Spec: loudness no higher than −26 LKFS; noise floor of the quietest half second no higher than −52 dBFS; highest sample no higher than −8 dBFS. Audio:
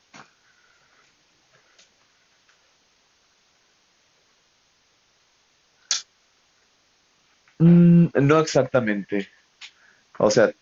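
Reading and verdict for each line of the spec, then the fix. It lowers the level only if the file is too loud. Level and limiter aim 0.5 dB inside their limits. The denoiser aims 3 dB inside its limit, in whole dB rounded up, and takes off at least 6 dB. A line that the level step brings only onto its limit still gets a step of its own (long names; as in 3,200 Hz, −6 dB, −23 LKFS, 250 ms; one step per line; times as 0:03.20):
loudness −19.0 LKFS: out of spec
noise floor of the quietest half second −64 dBFS: in spec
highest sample −6.0 dBFS: out of spec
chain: level −7.5 dB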